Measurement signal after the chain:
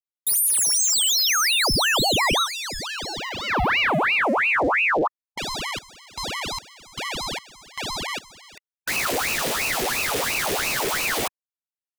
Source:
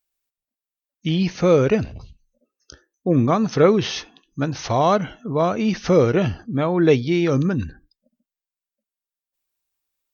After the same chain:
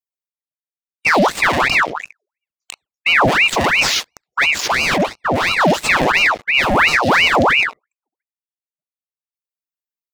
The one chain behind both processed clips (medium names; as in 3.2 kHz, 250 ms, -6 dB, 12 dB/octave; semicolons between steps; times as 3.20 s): waveshaping leveller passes 5; brick-wall FIR band-stop 390–1200 Hz; ring modulator with a swept carrier 1.5 kHz, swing 75%, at 2.9 Hz; trim -3.5 dB